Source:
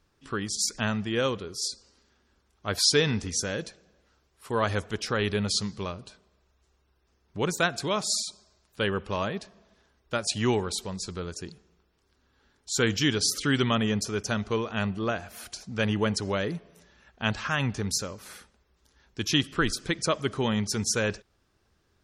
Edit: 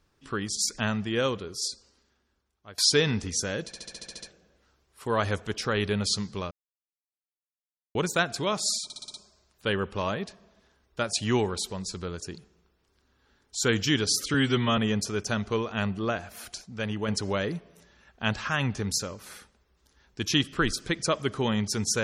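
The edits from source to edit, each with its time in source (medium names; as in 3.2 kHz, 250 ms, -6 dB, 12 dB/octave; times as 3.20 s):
1.64–2.78 s: fade out, to -21.5 dB
3.66 s: stutter 0.07 s, 9 plays
5.95–7.39 s: mute
8.28 s: stutter 0.06 s, 6 plays
13.48–13.77 s: stretch 1.5×
15.61–16.08 s: gain -5 dB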